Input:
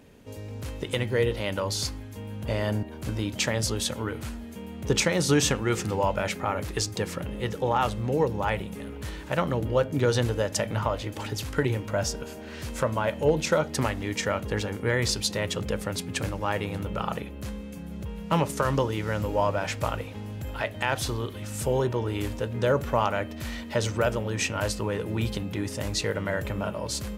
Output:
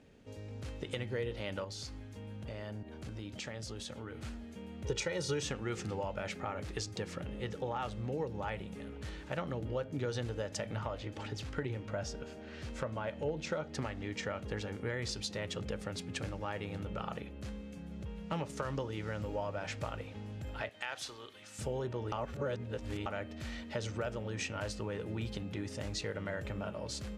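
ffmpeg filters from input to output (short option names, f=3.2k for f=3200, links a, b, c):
-filter_complex "[0:a]asettb=1/sr,asplit=3[a][b][c];[a]atrim=end=1.644[d];[b]atrim=start=1.64:end=4.23,asetpts=PTS-STARTPTS,afade=t=in:d=0.004:c=qsin,afade=t=out:st=2.586:d=0.004:c=qsin,acompressor=threshold=-34dB:ratio=2.5:attack=3.2:release=140:knee=1:detection=peak[e];[c]atrim=start=4.226[f];[d][e]acrossfade=d=0.004:c1=hsin:c2=qsin[g];[g][f]acrossfade=d=0.004:c1=qsin:c2=hsin,asettb=1/sr,asplit=3[h][i][j];[h]atrim=end=4.844[k];[i]atrim=start=4.84:end=5.43,asetpts=PTS-STARTPTS,afade=t=in:d=0.004:c=qsin,afade=t=out:st=0.586:d=0.004:c=qsin,aecho=1:1:2.1:0.74,atrim=end_sample=26019[l];[j]atrim=start=5.426[m];[k][l]acrossfade=d=0.004:c1=hsin:c2=qsin[n];[n][m]acrossfade=d=0.004:c1=qsin:c2=hsin,asettb=1/sr,asplit=3[o][p][q];[o]atrim=end=10.994[r];[p]atrim=start=10.99:end=14.35,asetpts=PTS-STARTPTS,afade=t=in:d=0.004:c=qsin,afade=t=out:st=3.356:d=0.004:c=qsin,highshelf=f=6.8k:g=-7.5[s];[q]atrim=start=14.346[t];[r][s]acrossfade=d=0.004:c1=hsin:c2=qsin[u];[u][t]acrossfade=d=0.004:c1=qsin:c2=hsin,asettb=1/sr,asplit=3[v][w][x];[v]atrim=end=20.694[y];[w]atrim=start=20.69:end=21.59,asetpts=PTS-STARTPTS,afade=t=in:d=0.004:c=qsin,afade=t=out:st=0.896:d=0.004:c=qsin,highpass=f=1.3k:p=1[z];[x]atrim=start=21.586[aa];[y][z]acrossfade=d=0.004:c1=hsin:c2=qsin[ab];[ab][aa]acrossfade=d=0.004:c1=qsin:c2=hsin,asplit=3[ac][ad][ae];[ac]atrim=end=22.122[af];[ad]atrim=start=22.118:end=23.062,asetpts=PTS-STARTPTS,areverse[ag];[ae]atrim=start=23.058[ah];[af][ag]acrossfade=d=0.004:c1=hsin:c2=hsin[ai];[ai][ah]acrossfade=d=0.004:c1=hsin:c2=hsin,acompressor=threshold=-27dB:ratio=2.5,lowpass=7.1k,bandreject=f=1k:w=9.4,volume=-7.5dB"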